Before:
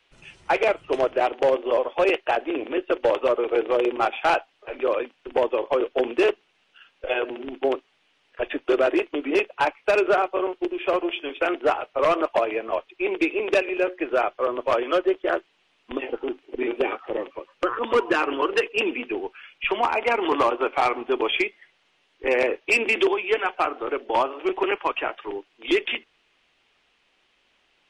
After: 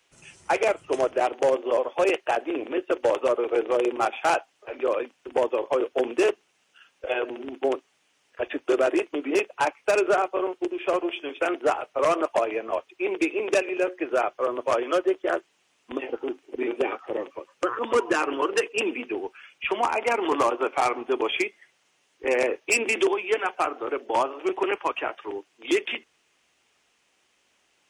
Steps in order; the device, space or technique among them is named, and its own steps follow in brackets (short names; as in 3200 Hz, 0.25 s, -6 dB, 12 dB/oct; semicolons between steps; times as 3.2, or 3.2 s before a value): budget condenser microphone (HPF 67 Hz; resonant high shelf 5100 Hz +9.5 dB, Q 1.5); gain -1.5 dB